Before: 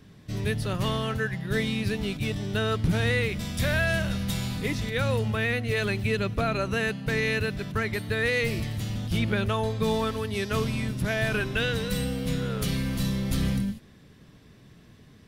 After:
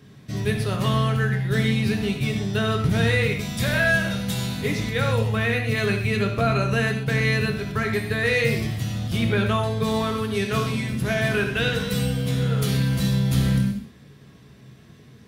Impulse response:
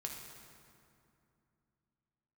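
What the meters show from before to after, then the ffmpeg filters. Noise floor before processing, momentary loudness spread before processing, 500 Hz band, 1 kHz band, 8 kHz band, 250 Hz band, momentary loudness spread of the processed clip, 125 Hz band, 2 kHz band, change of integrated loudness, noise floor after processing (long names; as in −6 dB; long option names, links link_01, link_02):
−53 dBFS, 5 LU, +3.5 dB, +4.5 dB, +3.5 dB, +4.5 dB, 5 LU, +6.0 dB, +4.5 dB, +4.5 dB, −49 dBFS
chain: -filter_complex "[0:a]highpass=73[link_01];[1:a]atrim=start_sample=2205,atrim=end_sample=6174[link_02];[link_01][link_02]afir=irnorm=-1:irlink=0,volume=6dB"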